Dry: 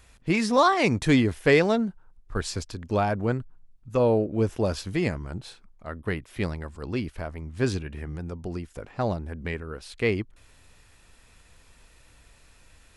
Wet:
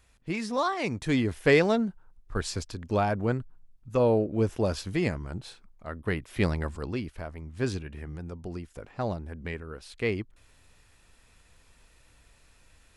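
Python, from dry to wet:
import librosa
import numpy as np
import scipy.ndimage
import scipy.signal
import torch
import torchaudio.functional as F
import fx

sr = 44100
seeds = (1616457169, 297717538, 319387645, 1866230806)

y = fx.gain(x, sr, db=fx.line((1.01, -8.0), (1.41, -1.5), (5.99, -1.5), (6.71, 5.5), (6.98, -4.0)))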